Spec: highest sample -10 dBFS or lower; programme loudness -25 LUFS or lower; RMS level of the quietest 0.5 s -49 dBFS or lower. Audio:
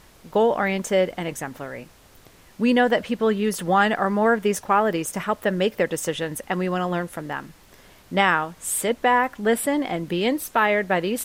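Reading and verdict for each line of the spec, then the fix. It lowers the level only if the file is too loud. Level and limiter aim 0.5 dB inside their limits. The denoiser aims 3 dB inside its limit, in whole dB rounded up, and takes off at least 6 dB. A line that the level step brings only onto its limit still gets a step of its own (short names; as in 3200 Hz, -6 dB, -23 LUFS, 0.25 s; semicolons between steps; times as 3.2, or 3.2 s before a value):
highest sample -5.5 dBFS: fail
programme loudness -22.5 LUFS: fail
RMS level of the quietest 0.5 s -51 dBFS: OK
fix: gain -3 dB; limiter -10.5 dBFS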